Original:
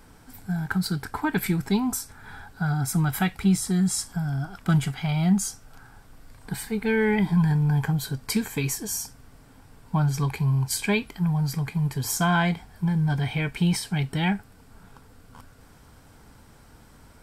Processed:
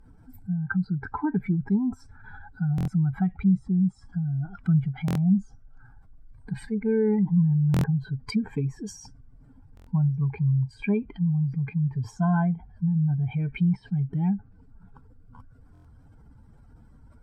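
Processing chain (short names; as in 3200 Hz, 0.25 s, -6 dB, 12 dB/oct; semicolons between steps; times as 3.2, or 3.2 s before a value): spectral contrast raised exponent 1.9; treble ducked by the level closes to 1000 Hz, closed at -22.5 dBFS; stuck buffer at 2.76/5.06/7.72/9.75/15.73, samples 1024, times 4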